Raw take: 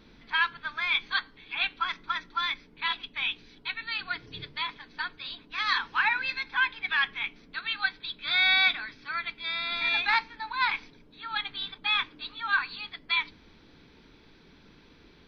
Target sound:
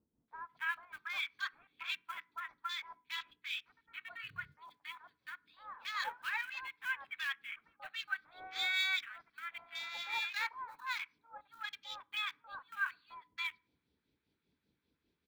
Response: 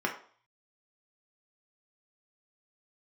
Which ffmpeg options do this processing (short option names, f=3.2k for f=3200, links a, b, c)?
-filter_complex "[0:a]highpass=f=61:w=0.5412,highpass=f=61:w=1.3066,afwtdn=0.02,acrusher=bits=6:mode=log:mix=0:aa=0.000001,lowshelf=f=140:g=6,acrossover=split=2200[a][b];[a]aeval=exprs='val(0)*(1-0.7/2+0.7/2*cos(2*PI*5.1*n/s))':c=same[c];[b]aeval=exprs='val(0)*(1-0.7/2-0.7/2*cos(2*PI*5.1*n/s))':c=same[d];[c][d]amix=inputs=2:normalize=0,acrossover=split=990[e][f];[f]adelay=280[g];[e][g]amix=inputs=2:normalize=0,asplit=2[h][i];[1:a]atrim=start_sample=2205[j];[i][j]afir=irnorm=-1:irlink=0,volume=-27.5dB[k];[h][k]amix=inputs=2:normalize=0,volume=-7.5dB"